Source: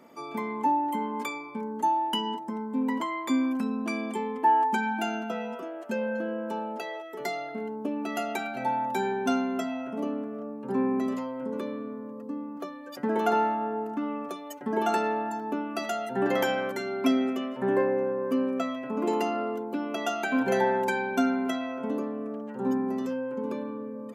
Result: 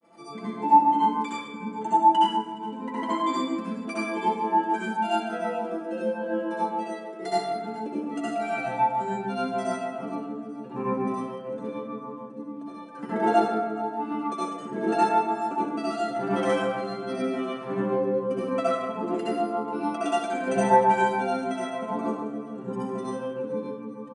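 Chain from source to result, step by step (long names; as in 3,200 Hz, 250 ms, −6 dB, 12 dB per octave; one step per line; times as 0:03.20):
comb filter 6 ms, depth 76%
granular cloud 145 ms, grains 6.8 per second, spray 19 ms, pitch spread up and down by 0 semitones
rotating-speaker cabinet horn 0.9 Hz
feedback echo with a high-pass in the loop 420 ms, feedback 55%, high-pass 790 Hz, level −19.5 dB
convolution reverb RT60 1.1 s, pre-delay 57 ms, DRR −9 dB
bad sample-rate conversion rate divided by 3×, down filtered, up zero stuff
linear-phase brick-wall low-pass 10,000 Hz
level −2.5 dB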